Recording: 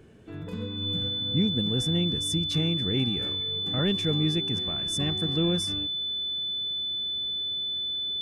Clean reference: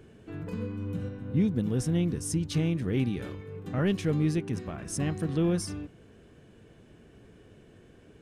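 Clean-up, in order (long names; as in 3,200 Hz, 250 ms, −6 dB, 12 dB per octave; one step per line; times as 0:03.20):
notch filter 3,500 Hz, Q 30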